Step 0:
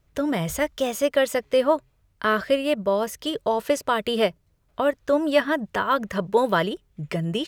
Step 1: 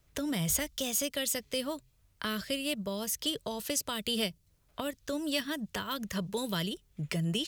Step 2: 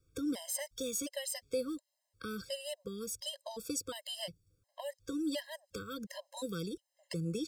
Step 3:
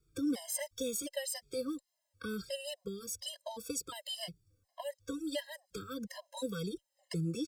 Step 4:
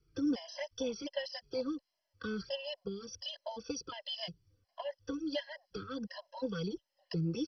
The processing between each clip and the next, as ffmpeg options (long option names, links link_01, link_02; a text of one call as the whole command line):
ffmpeg -i in.wav -filter_complex "[0:a]highshelf=frequency=2600:gain=8.5,acrossover=split=250|3000[link_01][link_02][link_03];[link_02]acompressor=threshold=-35dB:ratio=5[link_04];[link_01][link_04][link_03]amix=inputs=3:normalize=0,volume=-3.5dB" out.wav
ffmpeg -i in.wav -af "equalizer=frequency=100:width_type=o:width=0.33:gain=9,equalizer=frequency=315:width_type=o:width=0.33:gain=8,equalizer=frequency=500:width_type=o:width=0.33:gain=10,equalizer=frequency=2500:width_type=o:width=0.33:gain=-5,equalizer=frequency=5000:width_type=o:width=0.33:gain=6,equalizer=frequency=8000:width_type=o:width=0.33:gain=6,equalizer=frequency=16000:width_type=o:width=0.33:gain=-3,afftfilt=real='re*gt(sin(2*PI*1.4*pts/sr)*(1-2*mod(floor(b*sr/1024/540),2)),0)':imag='im*gt(sin(2*PI*1.4*pts/sr)*(1-2*mod(floor(b*sr/1024/540),2)),0)':win_size=1024:overlap=0.75,volume=-6.5dB" out.wav
ffmpeg -i in.wav -filter_complex "[0:a]asplit=2[link_01][link_02];[link_02]adelay=2.4,afreqshift=-2.1[link_03];[link_01][link_03]amix=inputs=2:normalize=1,volume=3dB" out.wav
ffmpeg -i in.wav -af "volume=1dB" -ar 32000 -c:a mp2 -b:a 32k out.mp2